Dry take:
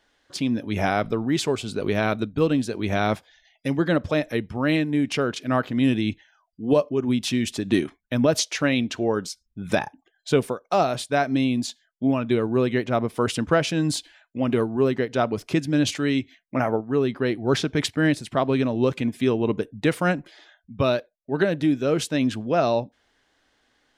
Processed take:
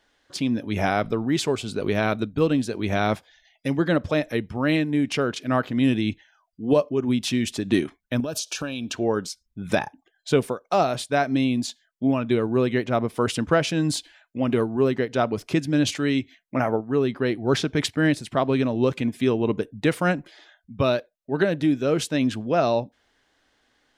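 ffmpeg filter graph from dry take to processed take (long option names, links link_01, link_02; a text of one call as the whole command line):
ffmpeg -i in.wav -filter_complex "[0:a]asettb=1/sr,asplit=3[link_01][link_02][link_03];[link_01]atrim=end=8.204[link_04];[link_02]atrim=start=8.2:end=8.93,asetpts=PTS-STARTPTS,afade=type=in:duration=0.004:curve=qsin,afade=type=out:start_time=0.726:duration=0.004:curve=qsin,highshelf=frequency=4400:gain=9.5,acompressor=threshold=-25dB:ratio=8:attack=3.2:release=140:knee=1:detection=peak,asuperstop=centerf=2000:order=8:qfactor=3.9[link_05];[link_03]atrim=start=8.926[link_06];[link_04][link_05]acrossfade=duration=0.004:curve1=hsin:curve2=qsin[link_07];[link_07][link_06]acrossfade=duration=0.004:curve1=qsin:curve2=hsin" out.wav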